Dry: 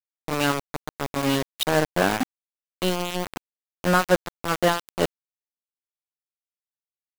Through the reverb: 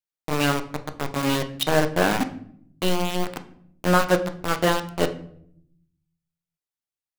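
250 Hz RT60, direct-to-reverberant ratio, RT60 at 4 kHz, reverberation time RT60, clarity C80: 1.1 s, 8.0 dB, 0.45 s, 0.65 s, 17.5 dB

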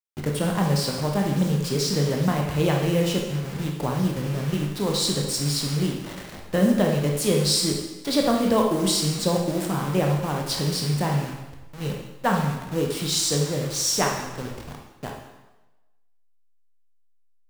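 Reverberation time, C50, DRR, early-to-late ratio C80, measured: 1.1 s, 3.5 dB, 0.0 dB, 6.0 dB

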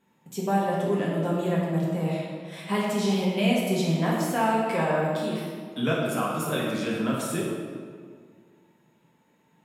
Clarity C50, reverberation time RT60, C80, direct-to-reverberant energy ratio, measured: 0.0 dB, 1.9 s, 2.0 dB, -5.0 dB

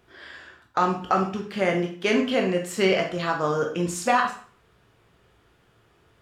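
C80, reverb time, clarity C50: 12.0 dB, 0.45 s, 7.0 dB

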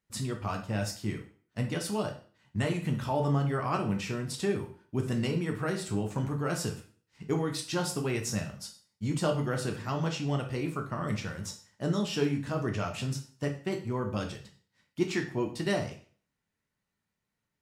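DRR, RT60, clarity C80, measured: 2.5 dB, 0.45 s, 14.0 dB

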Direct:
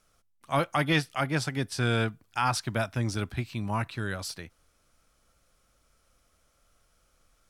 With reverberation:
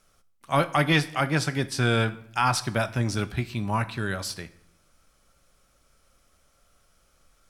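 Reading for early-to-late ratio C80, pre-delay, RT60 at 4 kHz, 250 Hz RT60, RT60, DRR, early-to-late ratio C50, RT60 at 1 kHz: 20.0 dB, 5 ms, 0.55 s, 0.90 s, 0.70 s, 10.5 dB, 16.5 dB, 0.65 s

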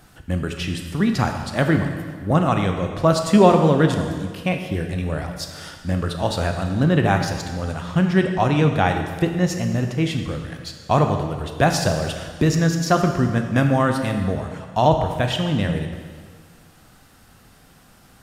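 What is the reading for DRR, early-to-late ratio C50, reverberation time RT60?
4.5 dB, 6.0 dB, 1.7 s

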